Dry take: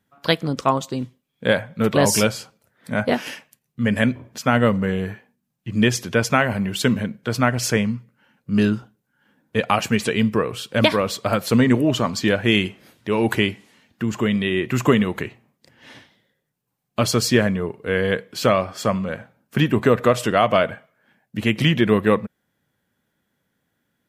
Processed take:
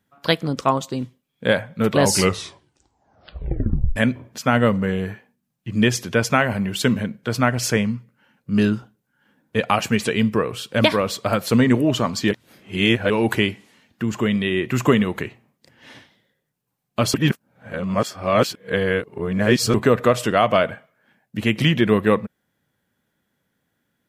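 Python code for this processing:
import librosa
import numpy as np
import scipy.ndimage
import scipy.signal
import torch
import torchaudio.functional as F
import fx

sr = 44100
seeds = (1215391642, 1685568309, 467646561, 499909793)

y = fx.edit(x, sr, fx.tape_stop(start_s=2.01, length_s=1.95),
    fx.reverse_span(start_s=12.31, length_s=0.79),
    fx.reverse_span(start_s=17.14, length_s=2.6), tone=tone)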